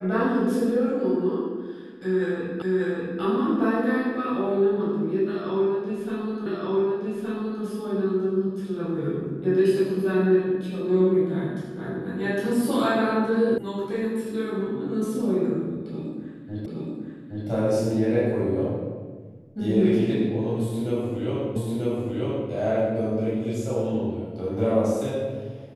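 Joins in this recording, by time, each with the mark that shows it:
2.62 s: repeat of the last 0.59 s
6.46 s: repeat of the last 1.17 s
13.58 s: sound stops dead
16.66 s: repeat of the last 0.82 s
21.56 s: repeat of the last 0.94 s

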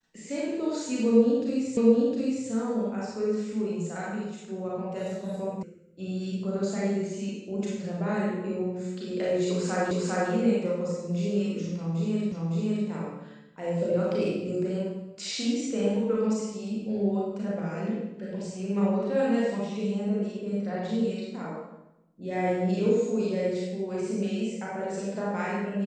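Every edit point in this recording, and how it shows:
1.77 s: repeat of the last 0.71 s
5.63 s: sound stops dead
9.91 s: repeat of the last 0.4 s
12.32 s: repeat of the last 0.56 s

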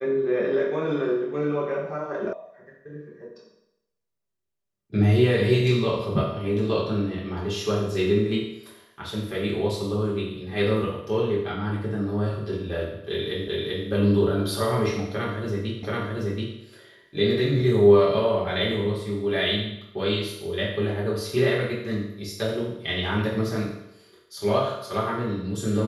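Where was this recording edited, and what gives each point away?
2.33 s: sound stops dead
13.48 s: repeat of the last 0.39 s
15.83 s: repeat of the last 0.73 s

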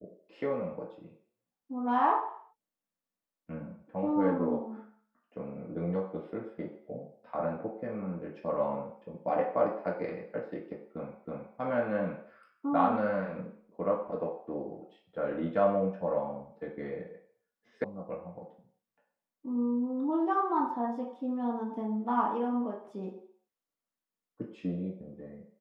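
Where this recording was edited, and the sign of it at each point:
11.25 s: repeat of the last 0.32 s
17.84 s: sound stops dead

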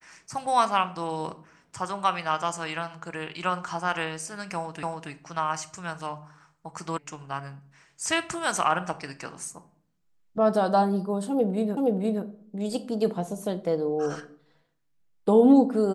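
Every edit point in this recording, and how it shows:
4.83 s: repeat of the last 0.28 s
6.98 s: sound stops dead
11.77 s: repeat of the last 0.47 s

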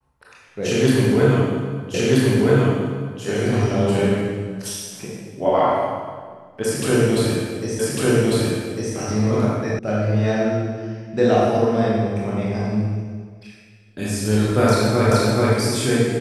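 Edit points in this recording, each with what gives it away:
1.94 s: repeat of the last 1.28 s
7.79 s: repeat of the last 1.15 s
9.79 s: sound stops dead
15.11 s: repeat of the last 0.43 s

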